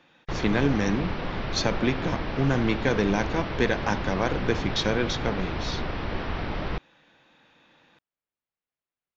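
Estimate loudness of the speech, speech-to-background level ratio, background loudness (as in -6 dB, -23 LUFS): -27.5 LUFS, 4.5 dB, -32.0 LUFS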